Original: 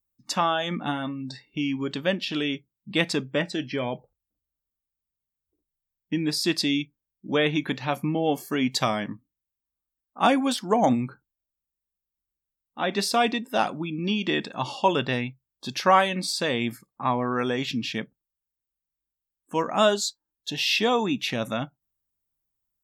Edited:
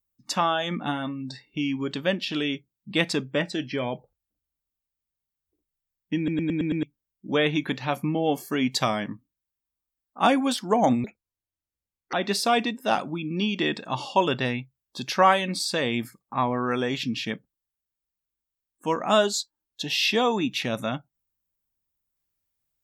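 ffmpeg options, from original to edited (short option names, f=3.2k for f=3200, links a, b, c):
-filter_complex "[0:a]asplit=9[a][b][c][d][e][f][g][h][i];[a]atrim=end=6.282[j];[b]atrim=start=6.168:end=6.282[k];[c]atrim=start=6.168:end=6.282[l];[d]atrim=start=6.168:end=6.282[m];[e]atrim=start=6.168:end=6.282[n];[f]atrim=start=6.168:end=6.282[o];[g]atrim=start=6.828:end=11.044[p];[h]atrim=start=11.04:end=12.81,asetpts=PTS-STARTPTS,asetrate=71442,aresample=44100,atrim=end_sample=48183,asetpts=PTS-STARTPTS[q];[i]atrim=start=12.806[r];[j][k]acrossfade=d=0.004:c1=hsin:c2=hsin[s];[s][l]acrossfade=d=0.004:c1=hsin:c2=hsin[t];[t][m]acrossfade=d=0.004:c1=hsin:c2=hsin[u];[u][n]acrossfade=d=0.004:c1=hsin:c2=hsin[v];[v][o]acrossfade=d=0.004:c1=hsin:c2=hsin[w];[w][p]acrossfade=d=0.004:c1=hsin:c2=hsin[x];[x][q]acrossfade=d=0.004:c1=hsin:c2=hsin[y];[y][r]acrossfade=d=0.004:c1=hsin:c2=hsin"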